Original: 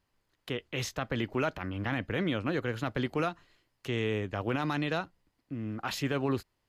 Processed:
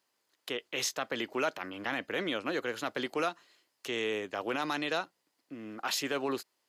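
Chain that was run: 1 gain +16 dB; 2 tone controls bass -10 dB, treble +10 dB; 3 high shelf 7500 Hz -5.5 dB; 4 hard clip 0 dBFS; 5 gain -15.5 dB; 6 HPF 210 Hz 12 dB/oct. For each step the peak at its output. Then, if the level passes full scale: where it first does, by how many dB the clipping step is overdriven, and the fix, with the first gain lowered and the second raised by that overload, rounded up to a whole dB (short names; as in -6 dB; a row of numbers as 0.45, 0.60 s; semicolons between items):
-2.5, -2.0, -3.5, -3.5, -19.0, -19.0 dBFS; no overload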